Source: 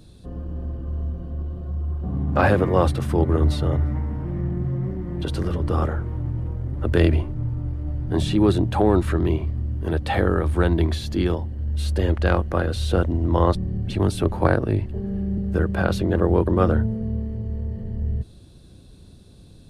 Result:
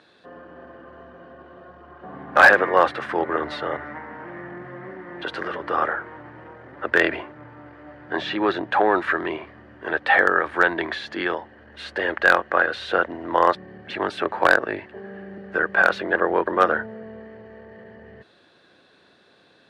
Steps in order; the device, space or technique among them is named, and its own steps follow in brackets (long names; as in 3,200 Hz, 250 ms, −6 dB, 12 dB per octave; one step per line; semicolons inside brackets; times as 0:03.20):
megaphone (band-pass filter 630–2,800 Hz; parametric band 1,700 Hz +10 dB 0.59 octaves; hard clipping −10.5 dBFS, distortion −20 dB)
0:08.16–0:08.71: low-pass filter 6,600 Hz 24 dB per octave
level +6 dB